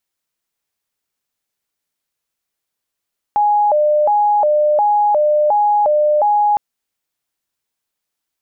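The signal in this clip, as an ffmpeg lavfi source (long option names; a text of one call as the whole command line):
ffmpeg -f lavfi -i "aevalsrc='0.299*sin(2*PI*(715.5*t+115.5/1.4*(0.5-abs(mod(1.4*t,1)-0.5))))':duration=3.21:sample_rate=44100" out.wav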